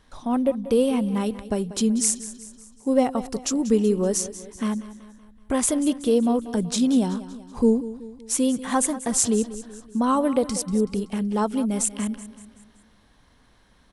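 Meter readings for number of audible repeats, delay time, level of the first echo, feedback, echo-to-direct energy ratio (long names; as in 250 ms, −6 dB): 4, 189 ms, −15.0 dB, 50%, −13.5 dB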